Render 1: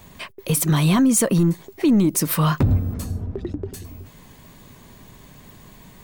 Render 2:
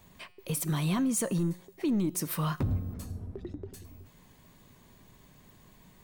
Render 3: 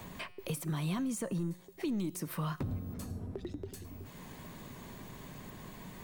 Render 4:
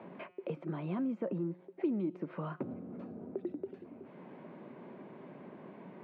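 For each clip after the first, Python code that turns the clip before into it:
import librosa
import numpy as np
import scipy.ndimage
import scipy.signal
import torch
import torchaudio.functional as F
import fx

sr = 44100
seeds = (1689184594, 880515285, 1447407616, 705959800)

y1 = fx.comb_fb(x, sr, f0_hz=180.0, decay_s=0.96, harmonics='all', damping=0.0, mix_pct=50)
y1 = y1 * librosa.db_to_amplitude(-6.0)
y2 = fx.band_squash(y1, sr, depth_pct=70)
y2 = y2 * librosa.db_to_amplitude(-5.0)
y3 = fx.cabinet(y2, sr, low_hz=180.0, low_slope=24, high_hz=2100.0, hz=(360.0, 570.0, 1100.0, 1800.0), db=(5, 5, -5, -8))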